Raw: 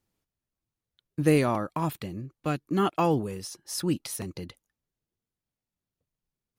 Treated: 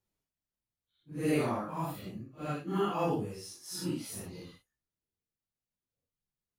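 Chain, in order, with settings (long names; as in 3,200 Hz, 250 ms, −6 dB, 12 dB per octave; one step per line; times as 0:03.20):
random phases in long frames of 200 ms
level −6.5 dB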